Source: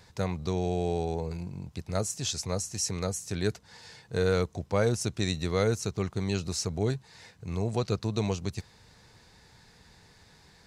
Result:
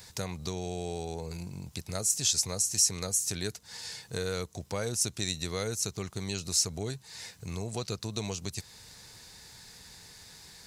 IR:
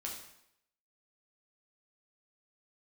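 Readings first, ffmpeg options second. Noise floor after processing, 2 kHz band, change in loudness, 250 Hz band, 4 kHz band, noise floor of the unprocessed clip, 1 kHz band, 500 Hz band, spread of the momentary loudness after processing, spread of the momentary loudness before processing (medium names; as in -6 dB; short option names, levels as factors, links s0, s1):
-57 dBFS, -3.0 dB, -1.0 dB, -6.5 dB, +4.0 dB, -58 dBFS, -6.0 dB, -7.5 dB, 23 LU, 11 LU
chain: -af "acompressor=threshold=0.0141:ratio=2,crystalizer=i=4:c=0"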